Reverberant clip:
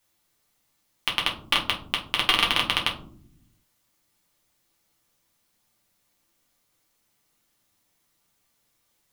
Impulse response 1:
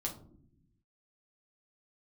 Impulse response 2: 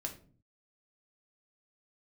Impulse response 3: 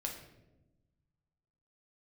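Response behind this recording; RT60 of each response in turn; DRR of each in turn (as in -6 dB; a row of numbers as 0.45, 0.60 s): 1; not exponential, 0.45 s, 1.0 s; -1.5, 1.5, 0.5 dB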